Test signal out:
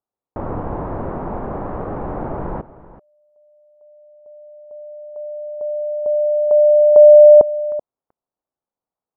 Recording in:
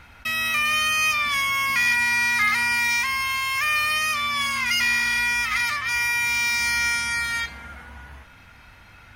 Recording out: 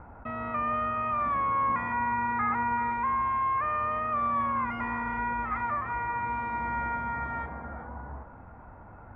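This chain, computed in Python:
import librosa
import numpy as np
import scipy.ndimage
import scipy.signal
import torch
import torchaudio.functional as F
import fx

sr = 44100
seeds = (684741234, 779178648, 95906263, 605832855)

y = scipy.signal.sosfilt(scipy.signal.butter(4, 1000.0, 'lowpass', fs=sr, output='sos'), x)
y = fx.low_shelf(y, sr, hz=200.0, db=-7.0)
y = y + 10.0 ** (-17.0 / 20.0) * np.pad(y, (int(383 * sr / 1000.0), 0))[:len(y)]
y = y * librosa.db_to_amplitude(7.5)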